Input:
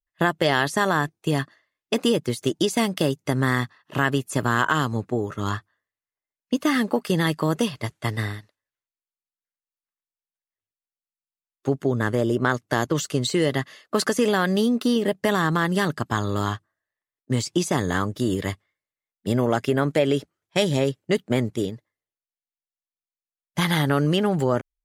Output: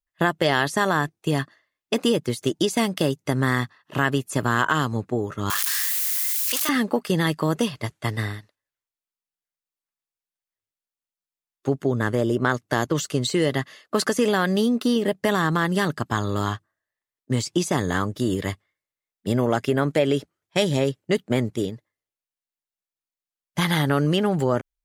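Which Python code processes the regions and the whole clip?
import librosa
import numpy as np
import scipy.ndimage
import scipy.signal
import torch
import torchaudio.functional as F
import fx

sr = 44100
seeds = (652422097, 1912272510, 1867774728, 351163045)

y = fx.chain(x, sr, fx.crossing_spikes(level_db=-18.5),
    fx.highpass(hz=1100.0, slope=12),
    fx.env_flatten(amount_pct=100), at=(5.5, 6.69))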